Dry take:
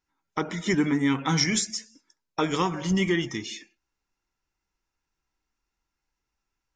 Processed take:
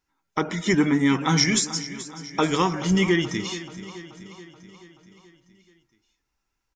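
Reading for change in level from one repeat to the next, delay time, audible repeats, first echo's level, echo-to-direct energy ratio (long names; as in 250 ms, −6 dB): −4.5 dB, 430 ms, 5, −15.0 dB, −13.0 dB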